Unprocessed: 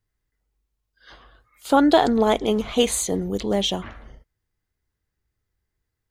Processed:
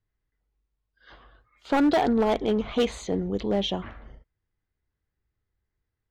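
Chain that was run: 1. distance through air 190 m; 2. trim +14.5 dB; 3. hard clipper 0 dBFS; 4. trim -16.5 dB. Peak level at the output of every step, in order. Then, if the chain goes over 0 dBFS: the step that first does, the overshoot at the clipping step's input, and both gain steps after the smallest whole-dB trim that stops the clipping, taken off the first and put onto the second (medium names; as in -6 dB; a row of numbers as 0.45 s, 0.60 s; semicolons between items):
-5.0 dBFS, +9.5 dBFS, 0.0 dBFS, -16.5 dBFS; step 2, 9.5 dB; step 2 +4.5 dB, step 4 -6.5 dB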